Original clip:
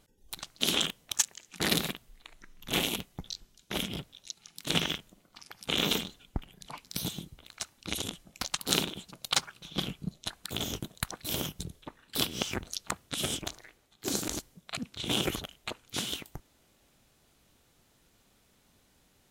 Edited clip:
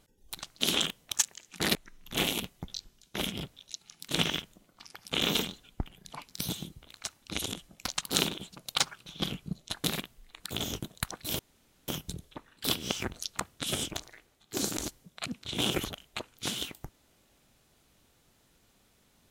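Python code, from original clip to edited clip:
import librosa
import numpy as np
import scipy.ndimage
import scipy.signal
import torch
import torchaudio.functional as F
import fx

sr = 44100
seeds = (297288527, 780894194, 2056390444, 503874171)

y = fx.edit(x, sr, fx.move(start_s=1.75, length_s=0.56, to_s=10.4),
    fx.insert_room_tone(at_s=11.39, length_s=0.49), tone=tone)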